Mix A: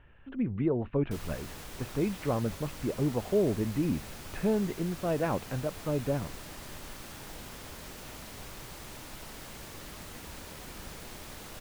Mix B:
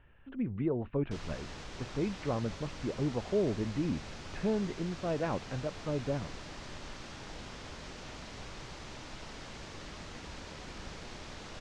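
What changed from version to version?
speech -3.5 dB; master: add LPF 6400 Hz 24 dB/oct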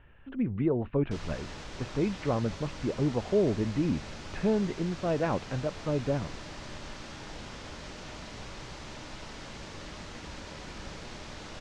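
speech +4.5 dB; background: send +10.0 dB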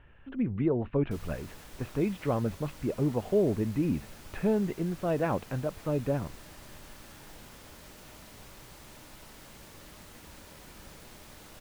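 background -8.0 dB; master: remove LPF 6400 Hz 24 dB/oct

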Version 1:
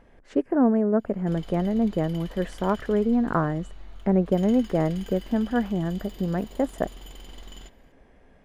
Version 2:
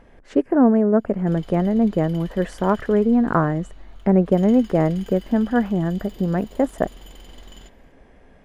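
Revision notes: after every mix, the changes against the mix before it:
speech +5.0 dB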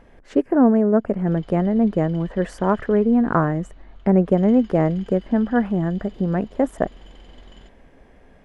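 background: add air absorption 130 m; reverb: off

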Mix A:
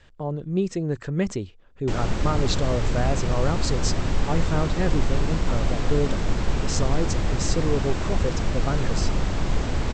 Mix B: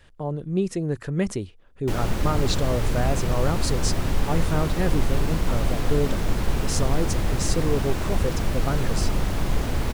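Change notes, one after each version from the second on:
master: remove steep low-pass 8000 Hz 96 dB/oct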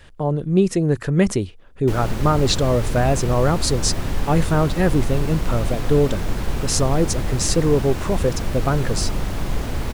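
speech +7.5 dB

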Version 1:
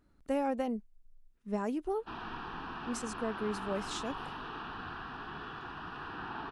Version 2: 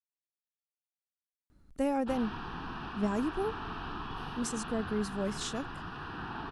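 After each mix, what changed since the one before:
speech: entry +1.50 s; master: add tone controls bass +7 dB, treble +5 dB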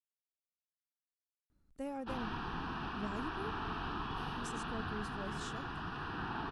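speech -11.5 dB

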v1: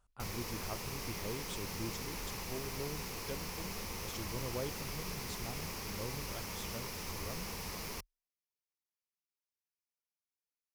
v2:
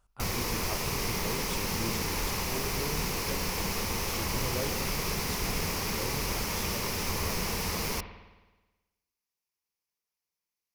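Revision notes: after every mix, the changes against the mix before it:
background +7.0 dB; reverb: on, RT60 1.2 s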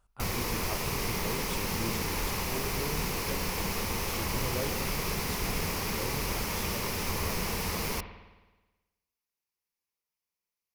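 master: add bell 5700 Hz -3 dB 0.79 oct

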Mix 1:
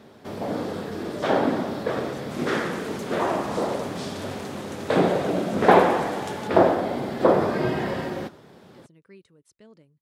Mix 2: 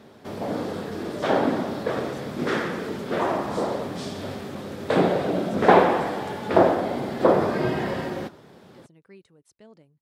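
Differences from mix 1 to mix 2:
speech: add bell 760 Hz +9 dB 0.38 oct; second sound -11.0 dB

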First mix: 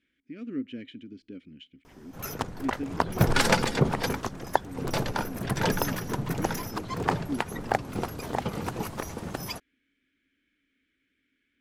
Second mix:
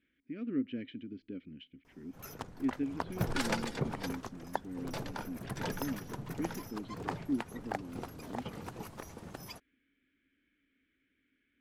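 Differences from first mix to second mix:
speech: add air absorption 230 m; background -11.5 dB

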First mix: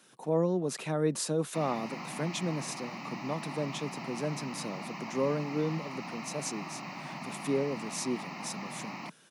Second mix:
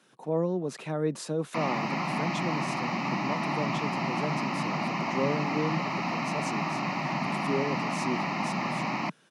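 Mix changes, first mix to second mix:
background +11.5 dB; master: add LPF 3500 Hz 6 dB/oct

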